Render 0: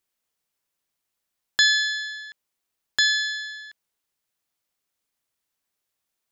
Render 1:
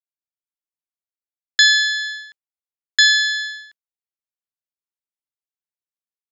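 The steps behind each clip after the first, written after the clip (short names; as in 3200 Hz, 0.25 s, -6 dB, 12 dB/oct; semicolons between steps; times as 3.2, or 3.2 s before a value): expander -32 dBFS; AGC gain up to 14 dB; gain -1 dB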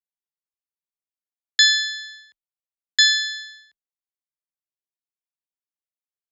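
frequency shift +20 Hz; bell 1500 Hz -7 dB 0.5 oct; upward expander 1.5:1, over -29 dBFS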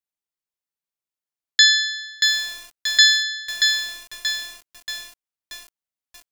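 lo-fi delay 0.631 s, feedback 55%, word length 6-bit, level -4.5 dB; gain +1.5 dB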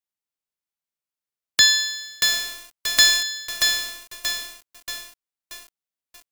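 spectral whitening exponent 0.3; gain -1.5 dB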